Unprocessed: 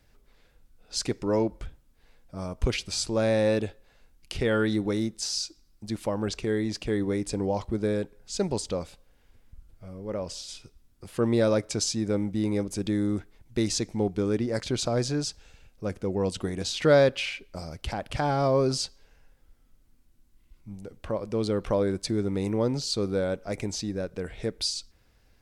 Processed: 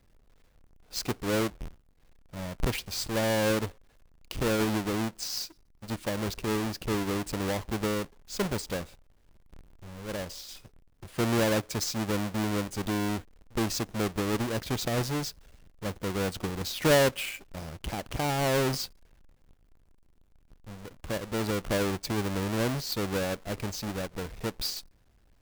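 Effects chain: square wave that keeps the level; trim -6.5 dB

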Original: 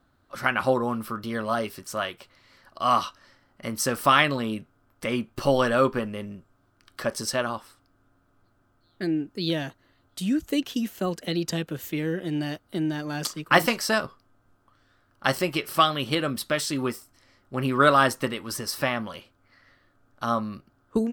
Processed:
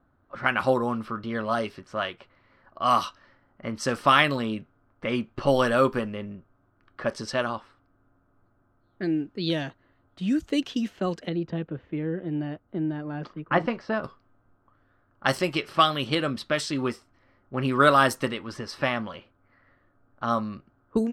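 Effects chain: level-controlled noise filter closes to 1.5 kHz, open at -18.5 dBFS; 11.29–14.04 s: tape spacing loss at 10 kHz 44 dB

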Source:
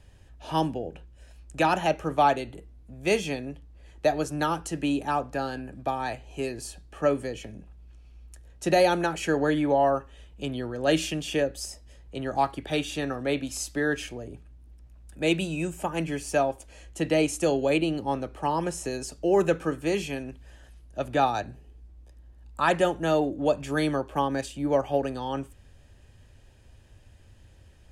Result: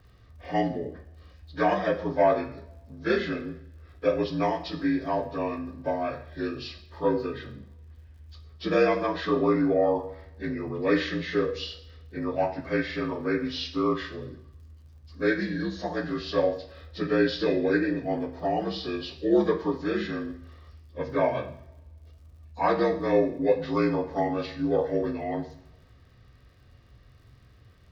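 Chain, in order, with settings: frequency axis rescaled in octaves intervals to 81%; crackle 74 per s -55 dBFS; two-slope reverb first 0.55 s, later 1.8 s, from -24 dB, DRR 4.5 dB

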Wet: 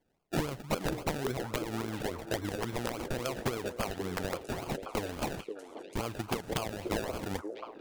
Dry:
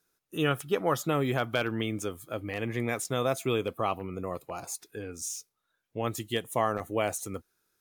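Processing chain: compression 10:1, threshold -33 dBFS, peak gain reduction 12.5 dB; transient shaper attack +10 dB, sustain +6 dB; decimation with a swept rate 33×, swing 60% 3.6 Hz; repeats whose band climbs or falls 533 ms, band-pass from 420 Hz, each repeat 1.4 oct, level -5.5 dB; integer overflow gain 22.5 dB

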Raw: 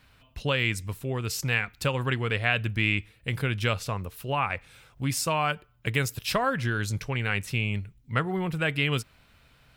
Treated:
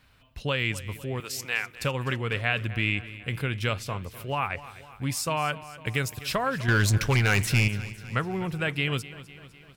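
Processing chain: 1.20–1.75 s: Bessel high-pass 520 Hz, order 2; 6.68–7.68 s: waveshaping leveller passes 3; feedback delay 252 ms, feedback 58%, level -16.5 dB; trim -1.5 dB

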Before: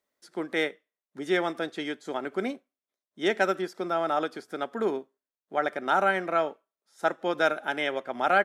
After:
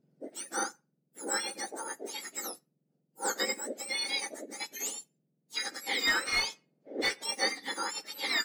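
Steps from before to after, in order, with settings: spectrum inverted on a logarithmic axis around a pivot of 1.7 kHz; resonant low shelf 760 Hz +8 dB, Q 1.5; 6.07–7.24 s: overdrive pedal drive 19 dB, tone 2.2 kHz, clips at -14 dBFS; trim -2 dB

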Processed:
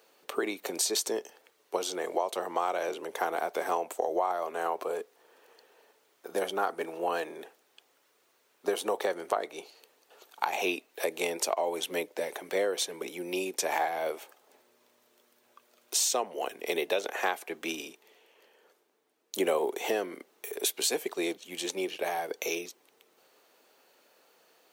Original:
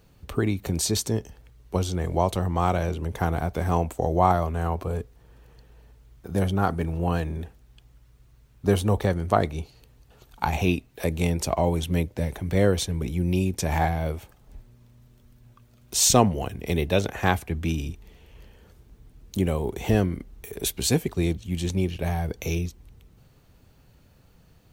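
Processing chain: high-pass 390 Hz 24 dB/octave; compression 12:1, threshold -26 dBFS, peak gain reduction 13 dB; 17.79–19.65 s: three bands expanded up and down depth 40%; trim +1.5 dB

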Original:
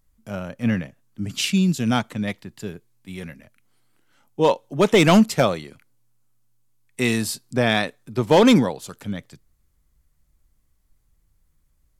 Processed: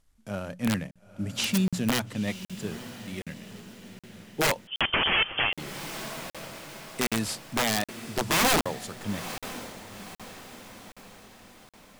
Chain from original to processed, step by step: CVSD coder 64 kbps; hum notches 60/120/180 Hz; in parallel at -2.5 dB: compression 6:1, threshold -26 dBFS, peak gain reduction 15 dB; on the sum: integer overflow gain 10.5 dB; on a send: echo that smears into a reverb 931 ms, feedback 49%, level -13 dB; 4.67–5.53 s: on the sum: frequency inversion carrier 3.3 kHz; crackling interface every 0.77 s, samples 2048, zero, from 0.91 s; trim -7 dB

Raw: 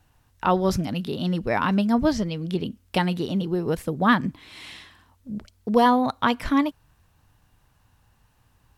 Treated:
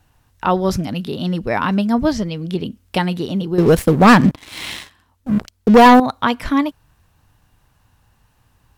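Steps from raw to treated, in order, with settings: 3.58–6.00 s: waveshaping leveller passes 3; trim +4 dB

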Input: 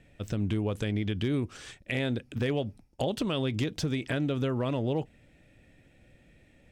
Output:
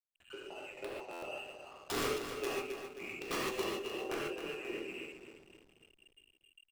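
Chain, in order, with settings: spectral noise reduction 21 dB; level-controlled noise filter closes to 660 Hz, open at -30.5 dBFS; transient shaper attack +3 dB, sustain -11 dB; band noise 150–250 Hz -56 dBFS; frequency inversion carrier 3 kHz; auto-wah 380–1900 Hz, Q 7.2, down, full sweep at -33.5 dBFS; integer overflow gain 43.5 dB; feedback delay 267 ms, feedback 50%, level -8 dB; gated-style reverb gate 170 ms flat, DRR -5.5 dB; hysteresis with a dead band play -58.5 dBFS; buffer glitch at 1.12 s, samples 512, times 8; trim +10.5 dB

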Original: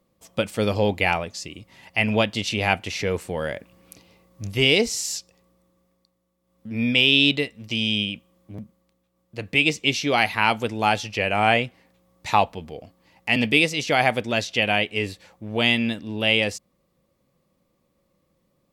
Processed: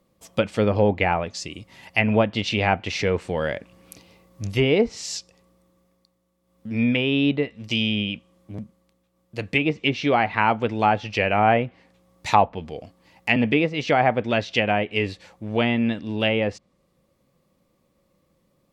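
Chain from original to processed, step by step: low-pass that closes with the level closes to 1.4 kHz, closed at -17 dBFS; trim +2.5 dB

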